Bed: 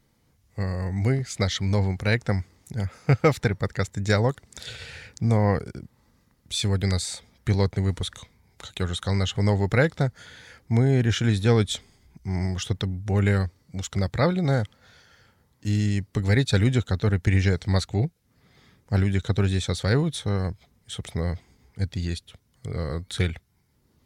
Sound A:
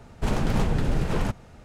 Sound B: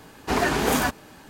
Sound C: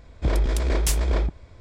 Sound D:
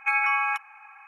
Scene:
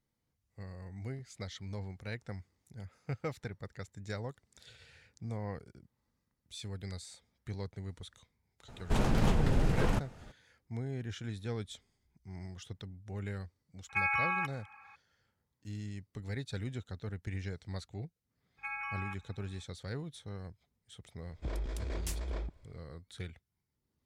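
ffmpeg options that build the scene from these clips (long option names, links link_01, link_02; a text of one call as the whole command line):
ffmpeg -i bed.wav -i cue0.wav -i cue1.wav -i cue2.wav -i cue3.wav -filter_complex "[4:a]asplit=2[link_01][link_02];[0:a]volume=-18.5dB[link_03];[link_02]aeval=exprs='val(0)+0.002*(sin(2*PI*50*n/s)+sin(2*PI*2*50*n/s)/2+sin(2*PI*3*50*n/s)/3+sin(2*PI*4*50*n/s)/4+sin(2*PI*5*50*n/s)/5)':channel_layout=same[link_04];[1:a]atrim=end=1.64,asetpts=PTS-STARTPTS,volume=-4dB,afade=type=in:duration=0.004:curve=hsin,afade=type=out:start_time=1.636:duration=0.004:curve=hsin,adelay=8680[link_05];[link_01]atrim=end=1.07,asetpts=PTS-STARTPTS,volume=-7.5dB,afade=type=in:duration=0.004:curve=hsin,afade=type=out:start_time=1.066:duration=0.004:curve=hsin,adelay=13890[link_06];[link_04]atrim=end=1.07,asetpts=PTS-STARTPTS,volume=-16.5dB,afade=type=in:duration=0.02,afade=type=out:start_time=1.05:duration=0.02,adelay=18570[link_07];[3:a]atrim=end=1.6,asetpts=PTS-STARTPTS,volume=-15.5dB,afade=type=in:duration=0.004:curve=hsin,afade=type=out:start_time=1.596:duration=0.004:curve=hsin,adelay=21200[link_08];[link_03][link_05][link_06][link_07][link_08]amix=inputs=5:normalize=0" out.wav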